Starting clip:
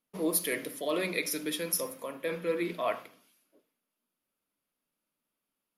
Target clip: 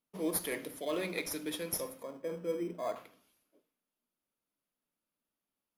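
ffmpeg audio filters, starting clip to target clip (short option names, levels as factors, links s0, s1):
-filter_complex "[0:a]asettb=1/sr,asplit=3[s0][s1][s2];[s0]atrim=end=2.034[s3];[s1]atrim=start=2.03:end=2.96,asetpts=PTS-STARTPTS,afade=t=in:d=0.004:c=qsin,afade=t=out:st=0.926:d=0.004:c=qsin,lowpass=1000[s4];[s2]atrim=start=2.956[s5];[s3][s4]acrossfade=d=0.004:c1=hsin:c2=qsin[s6];[s6][s5]acrossfade=d=0.004:c1=qsin:c2=hsin,asplit=2[s7][s8];[s8]acrusher=samples=16:mix=1:aa=0.000001,volume=0.299[s9];[s7][s9]amix=inputs=2:normalize=0,volume=0.501"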